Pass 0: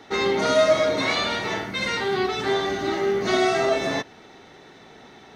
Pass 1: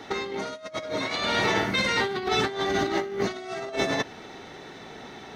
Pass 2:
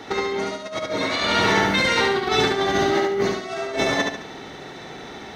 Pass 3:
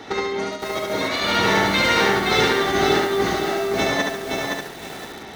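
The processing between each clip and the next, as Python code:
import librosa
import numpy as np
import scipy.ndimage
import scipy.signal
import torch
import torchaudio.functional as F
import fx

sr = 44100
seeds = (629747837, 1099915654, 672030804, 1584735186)

y1 = fx.over_compress(x, sr, threshold_db=-27.0, ratio=-0.5)
y2 = fx.echo_feedback(y1, sr, ms=71, feedback_pct=39, wet_db=-3.0)
y2 = y2 * 10.0 ** (3.5 / 20.0)
y3 = fx.echo_crushed(y2, sr, ms=517, feedback_pct=35, bits=6, wet_db=-3)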